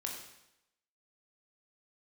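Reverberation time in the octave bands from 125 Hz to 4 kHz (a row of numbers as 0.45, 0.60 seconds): 0.80, 0.85, 0.85, 0.85, 0.85, 0.85 seconds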